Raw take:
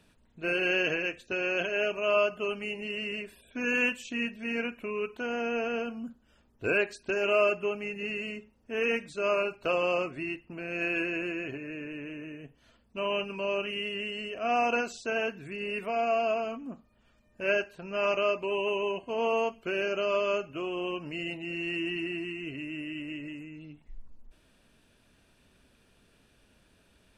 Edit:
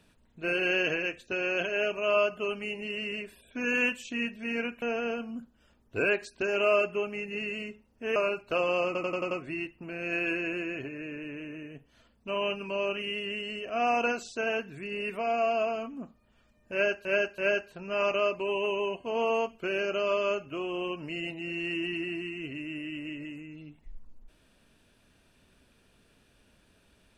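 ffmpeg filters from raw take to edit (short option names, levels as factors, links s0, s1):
-filter_complex "[0:a]asplit=10[s0][s1][s2][s3][s4][s5][s6][s7][s8][s9];[s0]atrim=end=4.822[s10];[s1]atrim=start=5.498:end=8.842[s11];[s2]atrim=start=9.298:end=10.092[s12];[s3]atrim=start=9.998:end=10.092[s13];[s4]atrim=start=9.998:end=10.092[s14];[s5]atrim=start=9.998:end=10.092[s15];[s6]atrim=start=9.998:end=10.092[s16];[s7]atrim=start=9.998:end=17.742[s17];[s8]atrim=start=17.408:end=17.742[s18];[s9]atrim=start=17.408[s19];[s10][s11]acrossfade=d=0.004:c1=hsin:c2=hsin[s20];[s20][s12]acrossfade=d=0.004:c1=hsin:c2=hsin[s21];[s21][s13]acrossfade=d=0.004:c1=hsin:c2=hsin[s22];[s22][s14]acrossfade=d=0.004:c1=hsin:c2=hsin[s23];[s23][s15]acrossfade=d=0.004:c1=hsin:c2=hsin[s24];[s24][s16]acrossfade=d=0.004:c1=hsin:c2=hsin[s25];[s25][s17]acrossfade=d=0.004:c1=hsin:c2=hsin[s26];[s26][s18]acrossfade=d=0.004:c1=hsin:c2=hsin[s27];[s27][s19]acrossfade=d=0.004:c1=hsin:c2=hsin"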